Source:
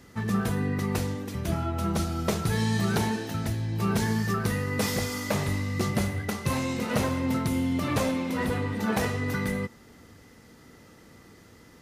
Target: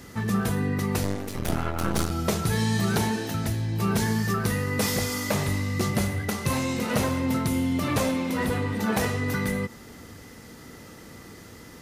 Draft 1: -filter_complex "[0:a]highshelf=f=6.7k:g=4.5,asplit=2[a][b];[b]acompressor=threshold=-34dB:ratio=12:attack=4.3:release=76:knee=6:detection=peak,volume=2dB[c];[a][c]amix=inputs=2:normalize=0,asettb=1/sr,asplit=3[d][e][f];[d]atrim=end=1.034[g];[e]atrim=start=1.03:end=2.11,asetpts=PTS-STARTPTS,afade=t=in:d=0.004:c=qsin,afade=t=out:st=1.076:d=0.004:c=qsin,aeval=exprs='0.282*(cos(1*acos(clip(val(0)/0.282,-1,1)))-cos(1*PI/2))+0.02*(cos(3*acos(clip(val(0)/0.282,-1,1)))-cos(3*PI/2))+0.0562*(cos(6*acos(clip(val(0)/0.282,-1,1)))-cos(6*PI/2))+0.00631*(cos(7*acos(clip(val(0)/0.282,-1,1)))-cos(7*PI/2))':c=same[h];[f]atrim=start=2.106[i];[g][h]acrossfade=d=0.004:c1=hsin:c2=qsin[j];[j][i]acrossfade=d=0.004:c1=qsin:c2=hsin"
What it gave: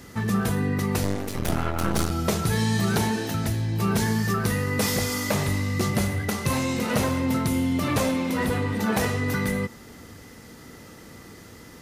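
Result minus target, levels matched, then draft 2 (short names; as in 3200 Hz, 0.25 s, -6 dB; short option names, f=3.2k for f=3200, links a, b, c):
compressor: peak gain reduction -6 dB
-filter_complex "[0:a]highshelf=f=6.7k:g=4.5,asplit=2[a][b];[b]acompressor=threshold=-40.5dB:ratio=12:attack=4.3:release=76:knee=6:detection=peak,volume=2dB[c];[a][c]amix=inputs=2:normalize=0,asettb=1/sr,asplit=3[d][e][f];[d]atrim=end=1.034[g];[e]atrim=start=1.03:end=2.11,asetpts=PTS-STARTPTS,afade=t=in:d=0.004:c=qsin,afade=t=out:st=1.076:d=0.004:c=qsin,aeval=exprs='0.282*(cos(1*acos(clip(val(0)/0.282,-1,1)))-cos(1*PI/2))+0.02*(cos(3*acos(clip(val(0)/0.282,-1,1)))-cos(3*PI/2))+0.0562*(cos(6*acos(clip(val(0)/0.282,-1,1)))-cos(6*PI/2))+0.00631*(cos(7*acos(clip(val(0)/0.282,-1,1)))-cos(7*PI/2))':c=same[h];[f]atrim=start=2.106[i];[g][h]acrossfade=d=0.004:c1=hsin:c2=qsin[j];[j][i]acrossfade=d=0.004:c1=qsin:c2=hsin"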